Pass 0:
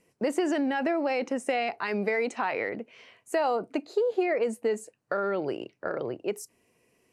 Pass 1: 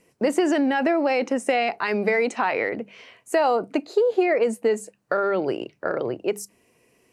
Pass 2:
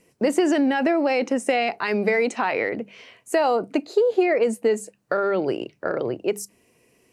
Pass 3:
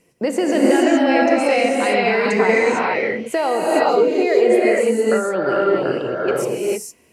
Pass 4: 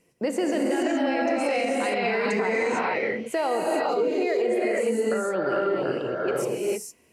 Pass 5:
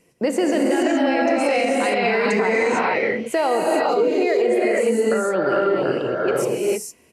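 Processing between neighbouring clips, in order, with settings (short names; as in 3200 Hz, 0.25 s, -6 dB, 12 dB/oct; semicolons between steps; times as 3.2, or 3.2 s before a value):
notches 50/100/150/200 Hz; gain +6 dB
bell 1100 Hz -3 dB 2.2 oct; gain +2 dB
non-linear reverb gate 0.48 s rising, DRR -5 dB
limiter -10.5 dBFS, peak gain reduction 7 dB; gain -5.5 dB
downsampling 32000 Hz; gain +5.5 dB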